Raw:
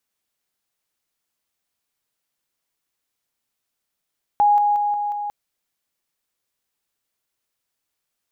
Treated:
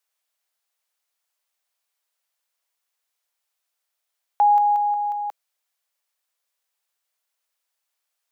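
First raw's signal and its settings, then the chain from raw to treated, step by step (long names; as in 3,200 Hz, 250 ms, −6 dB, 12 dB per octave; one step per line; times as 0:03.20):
level staircase 826 Hz −12 dBFS, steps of −3 dB, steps 5, 0.18 s 0.00 s
inverse Chebyshev high-pass filter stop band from 200 Hz, stop band 50 dB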